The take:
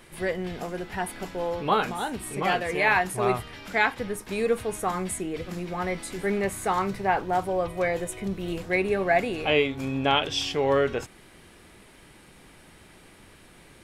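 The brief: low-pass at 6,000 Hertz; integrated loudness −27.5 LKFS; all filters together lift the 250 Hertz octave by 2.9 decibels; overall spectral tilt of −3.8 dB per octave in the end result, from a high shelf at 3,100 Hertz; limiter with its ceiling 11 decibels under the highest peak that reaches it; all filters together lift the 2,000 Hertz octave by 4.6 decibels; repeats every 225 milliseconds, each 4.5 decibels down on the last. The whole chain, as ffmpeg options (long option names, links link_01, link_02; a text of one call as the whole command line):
ffmpeg -i in.wav -af "lowpass=6000,equalizer=frequency=250:width_type=o:gain=4,equalizer=frequency=2000:width_type=o:gain=7,highshelf=frequency=3100:gain=-4,alimiter=limit=-16.5dB:level=0:latency=1,aecho=1:1:225|450|675|900|1125|1350|1575|1800|2025:0.596|0.357|0.214|0.129|0.0772|0.0463|0.0278|0.0167|0.01,volume=-1.5dB" out.wav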